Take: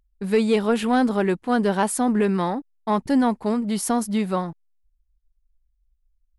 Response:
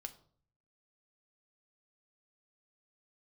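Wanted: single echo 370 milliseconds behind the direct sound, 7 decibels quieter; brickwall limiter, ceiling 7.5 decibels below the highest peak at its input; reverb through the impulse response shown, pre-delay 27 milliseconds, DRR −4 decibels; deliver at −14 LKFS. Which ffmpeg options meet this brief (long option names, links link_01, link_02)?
-filter_complex "[0:a]alimiter=limit=-17.5dB:level=0:latency=1,aecho=1:1:370:0.447,asplit=2[link_01][link_02];[1:a]atrim=start_sample=2205,adelay=27[link_03];[link_02][link_03]afir=irnorm=-1:irlink=0,volume=8dB[link_04];[link_01][link_04]amix=inputs=2:normalize=0,volume=6dB"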